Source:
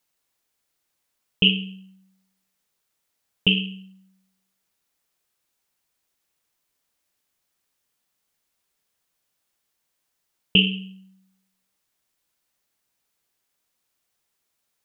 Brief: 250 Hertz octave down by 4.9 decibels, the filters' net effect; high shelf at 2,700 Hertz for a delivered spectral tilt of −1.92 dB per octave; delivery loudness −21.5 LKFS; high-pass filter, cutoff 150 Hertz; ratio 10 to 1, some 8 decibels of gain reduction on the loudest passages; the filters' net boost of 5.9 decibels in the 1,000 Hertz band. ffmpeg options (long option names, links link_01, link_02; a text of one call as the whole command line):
ffmpeg -i in.wav -af "highpass=150,equalizer=frequency=250:width_type=o:gain=-6,equalizer=frequency=1000:width_type=o:gain=9,highshelf=frequency=2700:gain=-5.5,acompressor=threshold=-23dB:ratio=10,volume=10dB" out.wav